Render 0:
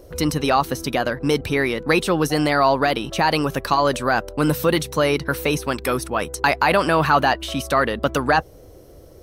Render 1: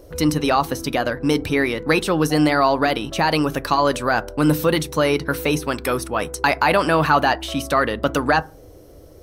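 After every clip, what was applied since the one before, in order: FDN reverb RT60 0.33 s, low-frequency decay 1.35×, high-frequency decay 0.45×, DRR 15 dB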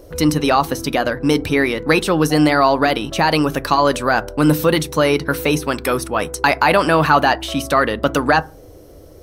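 notches 60/120 Hz; gain +3 dB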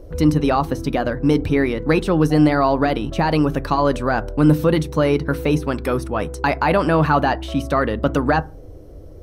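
tilt -2.5 dB/oct; gain -4.5 dB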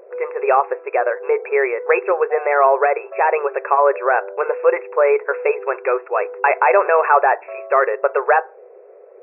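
brick-wall FIR band-pass 370–2700 Hz; gain +4.5 dB

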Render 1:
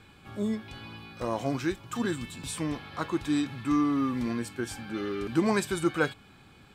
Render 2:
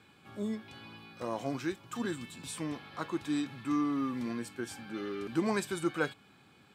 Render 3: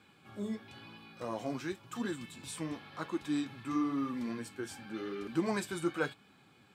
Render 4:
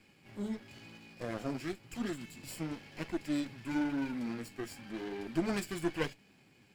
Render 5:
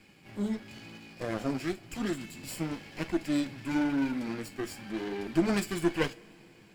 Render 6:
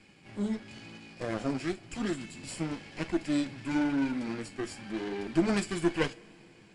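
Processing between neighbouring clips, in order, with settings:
HPF 130 Hz 12 dB/oct; gain -5 dB
flange 0.95 Hz, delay 3.3 ms, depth 9.3 ms, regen -47%; gain +2 dB
minimum comb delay 0.4 ms
two-slope reverb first 0.32 s, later 4.2 s, from -20 dB, DRR 14 dB; gain +5 dB
downsampling 22050 Hz

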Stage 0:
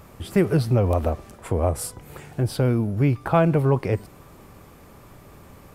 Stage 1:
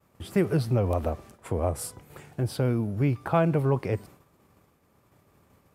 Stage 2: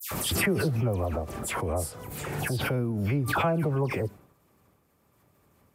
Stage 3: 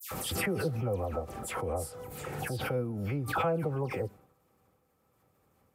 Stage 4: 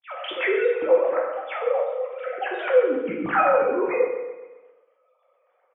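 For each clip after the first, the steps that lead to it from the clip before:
expander -38 dBFS; HPF 67 Hz; gain -4.5 dB
high shelf 10000 Hz +6 dB; dispersion lows, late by 0.113 s, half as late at 2200 Hz; backwards sustainer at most 27 dB/s; gain -3.5 dB
small resonant body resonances 500/780/1300 Hz, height 11 dB, ringing for 95 ms; gain -6.5 dB
sine-wave speech; on a send: feedback echo 0.132 s, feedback 50%, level -12 dB; on the sum: plate-style reverb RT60 0.81 s, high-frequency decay 0.9×, pre-delay 0 ms, DRR -1 dB; gain +6.5 dB

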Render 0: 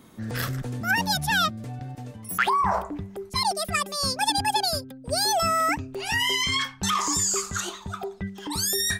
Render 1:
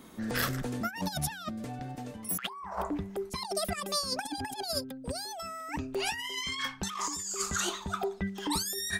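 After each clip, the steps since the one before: bell 110 Hz -14 dB 0.49 oct; negative-ratio compressor -29 dBFS, ratio -0.5; gain -3.5 dB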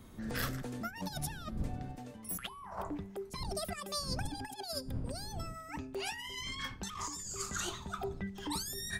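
wind noise 130 Hz -39 dBFS; de-hum 431.6 Hz, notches 30; gain -6.5 dB

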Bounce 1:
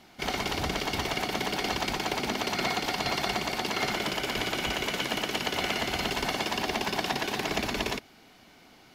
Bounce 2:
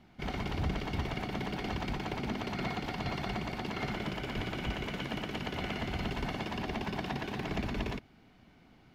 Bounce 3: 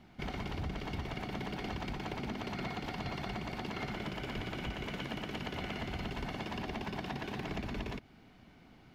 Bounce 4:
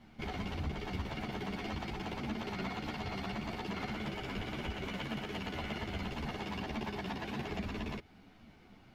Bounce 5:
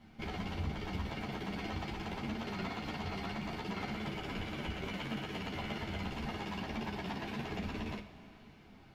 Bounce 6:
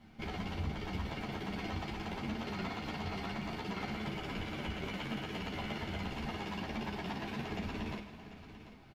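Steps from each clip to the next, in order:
tone controls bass +12 dB, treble -11 dB; gain -8 dB
compressor 2.5:1, threshold -39 dBFS, peak gain reduction 8 dB; gain +1.5 dB
ensemble effect; gain +3 dB
two-slope reverb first 0.36 s, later 4.1 s, from -17 dB, DRR 5 dB; gain -1.5 dB
echo 0.742 s -14 dB

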